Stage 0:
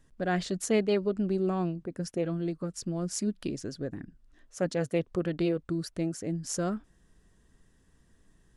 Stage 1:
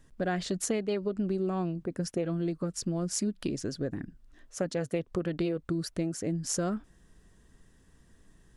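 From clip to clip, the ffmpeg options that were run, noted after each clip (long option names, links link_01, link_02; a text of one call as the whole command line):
ffmpeg -i in.wav -af "acompressor=threshold=-30dB:ratio=6,volume=3.5dB" out.wav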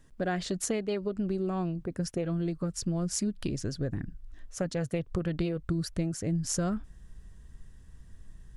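ffmpeg -i in.wav -af "asubboost=boost=4:cutoff=140" out.wav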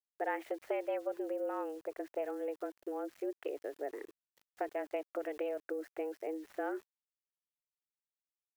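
ffmpeg -i in.wav -af "highpass=frequency=220:width_type=q:width=0.5412,highpass=frequency=220:width_type=q:width=1.307,lowpass=frequency=2400:width_type=q:width=0.5176,lowpass=frequency=2400:width_type=q:width=0.7071,lowpass=frequency=2400:width_type=q:width=1.932,afreqshift=150,aeval=exprs='val(0)*gte(abs(val(0)),0.002)':channel_layout=same,crystalizer=i=1:c=0,volume=-4dB" out.wav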